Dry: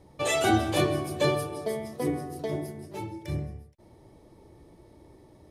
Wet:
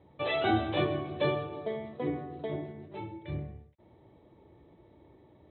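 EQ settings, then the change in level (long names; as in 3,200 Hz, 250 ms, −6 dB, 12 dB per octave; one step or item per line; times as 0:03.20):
high-pass filter 60 Hz
Chebyshev low-pass filter 3,900 Hz, order 8
−3.5 dB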